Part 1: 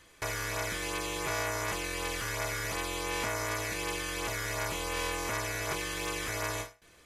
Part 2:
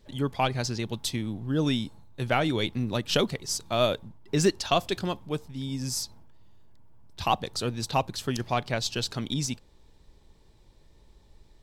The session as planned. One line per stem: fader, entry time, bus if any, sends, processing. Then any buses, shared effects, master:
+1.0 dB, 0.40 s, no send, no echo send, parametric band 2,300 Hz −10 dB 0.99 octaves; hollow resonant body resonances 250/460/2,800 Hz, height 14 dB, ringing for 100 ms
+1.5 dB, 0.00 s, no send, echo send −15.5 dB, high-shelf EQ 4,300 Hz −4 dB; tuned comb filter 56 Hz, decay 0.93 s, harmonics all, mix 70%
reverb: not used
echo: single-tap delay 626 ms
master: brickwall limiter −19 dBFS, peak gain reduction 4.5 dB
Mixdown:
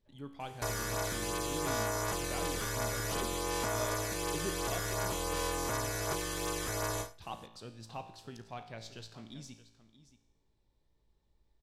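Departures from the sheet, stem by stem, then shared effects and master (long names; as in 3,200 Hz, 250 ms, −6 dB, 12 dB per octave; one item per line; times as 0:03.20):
stem 1: missing hollow resonant body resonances 250/460/2,800 Hz, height 14 dB, ringing for 100 ms
stem 2 +1.5 dB → −9.5 dB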